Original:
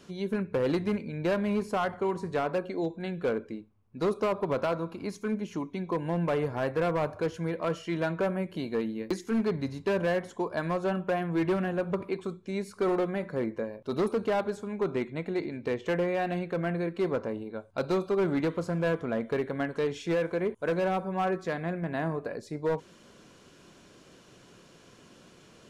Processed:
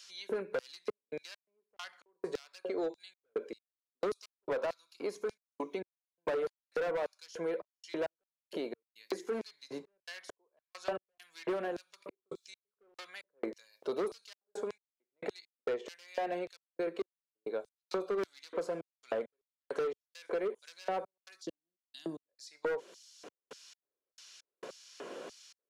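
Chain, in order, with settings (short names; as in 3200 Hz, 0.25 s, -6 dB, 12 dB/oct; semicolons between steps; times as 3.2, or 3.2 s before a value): spectral gain 21.41–22.29, 350–2700 Hz -21 dB; LFO high-pass square 1.7 Hz 460–5000 Hz; wavefolder -18.5 dBFS; step gate "xxxx.x..x." 67 bpm -60 dB; soft clip -22 dBFS, distortion -17 dB; three-band squash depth 70%; gain -4 dB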